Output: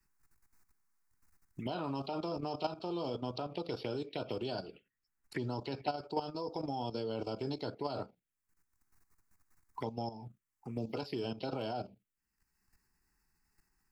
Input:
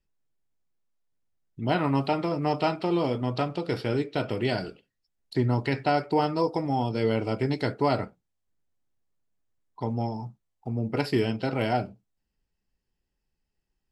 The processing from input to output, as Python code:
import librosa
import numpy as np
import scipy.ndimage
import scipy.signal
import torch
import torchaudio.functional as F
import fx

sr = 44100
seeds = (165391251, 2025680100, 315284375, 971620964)

y = fx.low_shelf(x, sr, hz=320.0, db=-11.0)
y = fx.level_steps(y, sr, step_db=12)
y = fx.env_phaser(y, sr, low_hz=560.0, high_hz=2000.0, full_db=-34.0)
y = fx.band_squash(y, sr, depth_pct=70)